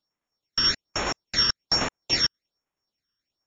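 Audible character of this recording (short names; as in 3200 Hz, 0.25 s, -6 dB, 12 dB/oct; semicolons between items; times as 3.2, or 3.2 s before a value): a buzz of ramps at a fixed pitch in blocks of 8 samples; tremolo saw down 9.4 Hz, depth 40%; phasing stages 12, 1.2 Hz, lowest notch 720–4900 Hz; MP3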